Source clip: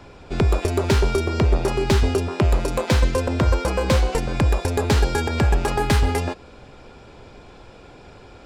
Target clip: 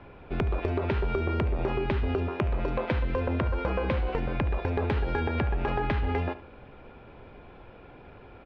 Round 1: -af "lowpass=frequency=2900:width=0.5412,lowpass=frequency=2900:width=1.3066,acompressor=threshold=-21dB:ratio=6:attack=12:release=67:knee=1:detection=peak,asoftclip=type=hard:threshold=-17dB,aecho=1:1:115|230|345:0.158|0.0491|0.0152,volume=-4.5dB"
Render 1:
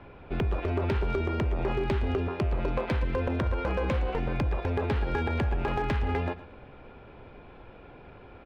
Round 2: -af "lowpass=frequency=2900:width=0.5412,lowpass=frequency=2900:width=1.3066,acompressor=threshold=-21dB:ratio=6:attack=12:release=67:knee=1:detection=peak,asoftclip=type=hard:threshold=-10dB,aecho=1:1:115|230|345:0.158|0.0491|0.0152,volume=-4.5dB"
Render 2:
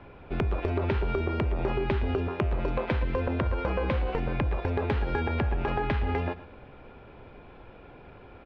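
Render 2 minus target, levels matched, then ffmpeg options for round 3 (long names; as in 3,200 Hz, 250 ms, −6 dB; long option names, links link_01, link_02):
echo 42 ms late
-af "lowpass=frequency=2900:width=0.5412,lowpass=frequency=2900:width=1.3066,acompressor=threshold=-21dB:ratio=6:attack=12:release=67:knee=1:detection=peak,asoftclip=type=hard:threshold=-10dB,aecho=1:1:73|146|219:0.158|0.0491|0.0152,volume=-4.5dB"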